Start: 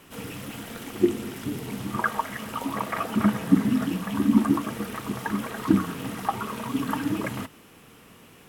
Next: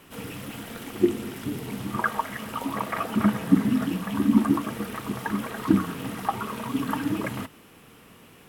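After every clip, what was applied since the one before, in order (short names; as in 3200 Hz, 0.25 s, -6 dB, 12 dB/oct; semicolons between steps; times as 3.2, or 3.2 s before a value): bell 6500 Hz -2.5 dB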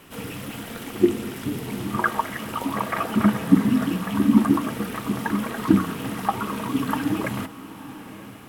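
diffused feedback echo 0.922 s, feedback 47%, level -15.5 dB; gain +3 dB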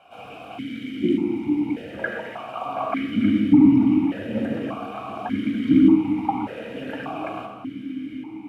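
octaver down 1 oct, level -3 dB; reverb RT60 1.0 s, pre-delay 14 ms, DRR 2 dB; vowel sequencer 1.7 Hz; gain +6.5 dB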